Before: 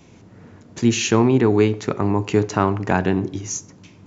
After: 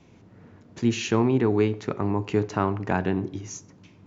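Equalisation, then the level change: distance through air 85 m; -5.5 dB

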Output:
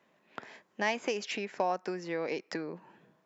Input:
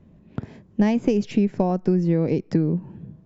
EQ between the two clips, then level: high-pass 880 Hz 12 dB/octave; peaking EQ 1.8 kHz +2.5 dB 0.77 oct; +2.0 dB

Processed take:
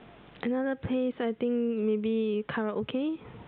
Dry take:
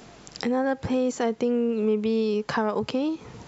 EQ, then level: steep low-pass 3.6 kHz 96 dB/octave; dynamic bell 870 Hz, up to -8 dB, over -42 dBFS, Q 1.8; -3.5 dB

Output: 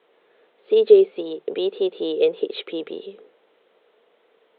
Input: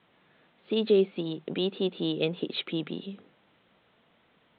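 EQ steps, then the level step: resonant high-pass 440 Hz, resonance Q 4.9; 0.0 dB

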